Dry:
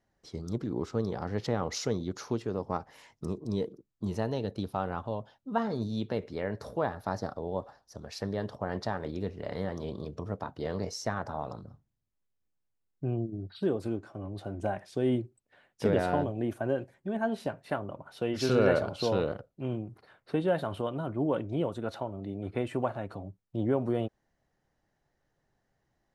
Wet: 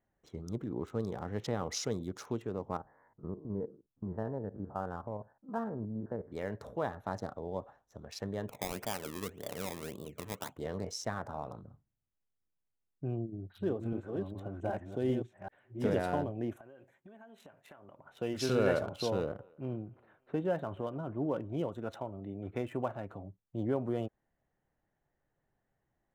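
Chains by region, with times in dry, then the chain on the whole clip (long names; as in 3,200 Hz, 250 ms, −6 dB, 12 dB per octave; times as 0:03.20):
0:02.77–0:06.32: spectrum averaged block by block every 50 ms + elliptic low-pass filter 1,700 Hz
0:08.48–0:10.58: high-pass filter 160 Hz 6 dB per octave + sample-and-hold swept by an LFO 21× 1.8 Hz
0:13.15–0:16.04: delay that plays each chunk backwards 389 ms, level −4 dB + high-shelf EQ 5,600 Hz −5 dB
0:16.56–0:18.04: spectral tilt +2.5 dB per octave + downward compressor 12 to 1, threshold −45 dBFS
0:19.10–0:21.52: low-pass filter 2,000 Hz 6 dB per octave + feedback echo with a high-pass in the loop 290 ms, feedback 68%, high-pass 650 Hz, level −23 dB
whole clip: adaptive Wiener filter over 9 samples; high-shelf EQ 5,400 Hz +8.5 dB; notch filter 4,400 Hz, Q 18; level −4.5 dB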